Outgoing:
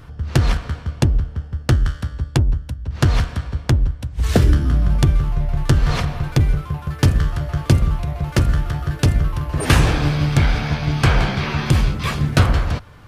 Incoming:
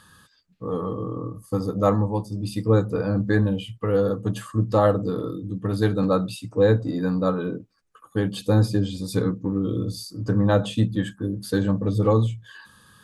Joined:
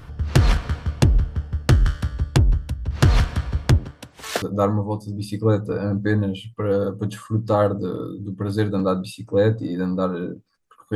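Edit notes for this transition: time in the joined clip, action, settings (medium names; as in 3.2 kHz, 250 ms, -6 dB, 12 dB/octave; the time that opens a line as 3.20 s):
outgoing
3.77–4.42 s: high-pass 150 Hz -> 800 Hz
4.42 s: go over to incoming from 1.66 s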